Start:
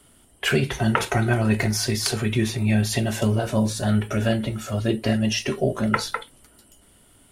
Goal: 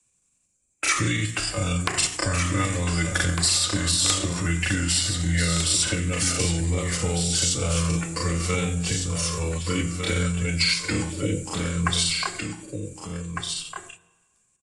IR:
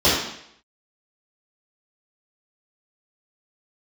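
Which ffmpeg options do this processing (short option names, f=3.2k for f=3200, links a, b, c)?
-filter_complex "[0:a]aemphasis=mode=production:type=75fm,agate=range=-23dB:threshold=-31dB:ratio=16:detection=peak,equalizer=f=160:w=2:g=6.5,bandreject=f=197.4:t=h:w=4,bandreject=f=394.8:t=h:w=4,bandreject=f=592.2:t=h:w=4,bandreject=f=789.6:t=h:w=4,bandreject=f=987:t=h:w=4,bandreject=f=1.1844k:t=h:w=4,acrossover=split=110|360|2000[a][b][c][d];[a]acompressor=threshold=-34dB:ratio=4[e];[b]acompressor=threshold=-30dB:ratio=4[f];[c]acompressor=threshold=-30dB:ratio=4[g];[d]acompressor=threshold=-20dB:ratio=4[h];[e][f][g][h]amix=inputs=4:normalize=0,asetrate=70004,aresample=44100,atempo=0.629961,aeval=exprs='(mod(2.66*val(0)+1,2)-1)/2.66':c=same,aecho=1:1:752:0.473,asplit=2[i][j];[1:a]atrim=start_sample=2205[k];[j][k]afir=irnorm=-1:irlink=0,volume=-40dB[l];[i][l]amix=inputs=2:normalize=0,asetrate=22050,aresample=44100"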